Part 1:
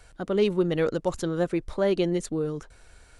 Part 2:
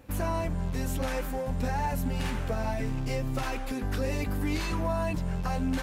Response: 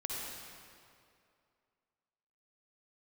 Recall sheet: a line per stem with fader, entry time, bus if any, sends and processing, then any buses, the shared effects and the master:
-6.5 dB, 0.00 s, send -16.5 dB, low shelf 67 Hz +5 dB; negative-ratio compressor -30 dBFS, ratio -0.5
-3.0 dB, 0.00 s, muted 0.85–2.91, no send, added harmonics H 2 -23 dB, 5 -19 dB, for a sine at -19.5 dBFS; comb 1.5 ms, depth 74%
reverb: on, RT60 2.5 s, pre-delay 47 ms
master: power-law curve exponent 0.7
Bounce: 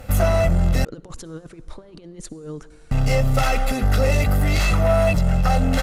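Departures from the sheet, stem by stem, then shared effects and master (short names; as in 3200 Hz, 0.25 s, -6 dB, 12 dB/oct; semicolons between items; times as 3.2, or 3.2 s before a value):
stem 2 -3.0 dB -> +8.0 dB; master: missing power-law curve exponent 0.7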